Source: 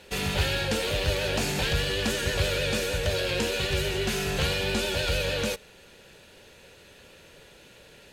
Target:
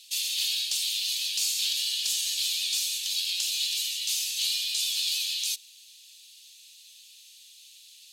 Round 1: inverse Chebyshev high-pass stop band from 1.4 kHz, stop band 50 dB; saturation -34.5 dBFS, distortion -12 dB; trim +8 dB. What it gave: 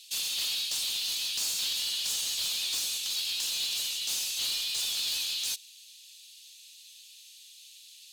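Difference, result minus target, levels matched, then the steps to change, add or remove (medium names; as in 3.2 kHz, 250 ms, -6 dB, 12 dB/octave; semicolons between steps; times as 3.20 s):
saturation: distortion +14 dB
change: saturation -23.5 dBFS, distortion -26 dB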